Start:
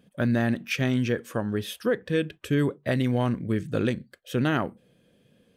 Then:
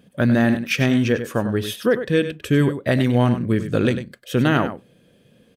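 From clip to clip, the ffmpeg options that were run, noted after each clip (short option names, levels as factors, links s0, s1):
-af "aecho=1:1:98:0.299,volume=2.11"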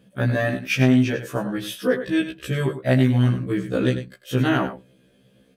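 -af "afftfilt=real='re*1.73*eq(mod(b,3),0)':imag='im*1.73*eq(mod(b,3),0)':win_size=2048:overlap=0.75"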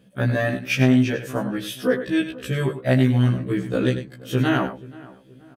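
-filter_complex "[0:a]asplit=2[s0][s1];[s1]adelay=478,lowpass=f=1600:p=1,volume=0.1,asplit=2[s2][s3];[s3]adelay=478,lowpass=f=1600:p=1,volume=0.43,asplit=2[s4][s5];[s5]adelay=478,lowpass=f=1600:p=1,volume=0.43[s6];[s0][s2][s4][s6]amix=inputs=4:normalize=0"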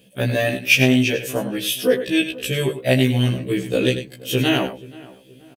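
-af "firequalizer=gain_entry='entry(220,0);entry(450,6);entry(1300,-5);entry(2600,13);entry(4000,9);entry(13000,15)':delay=0.05:min_phase=1,volume=0.891"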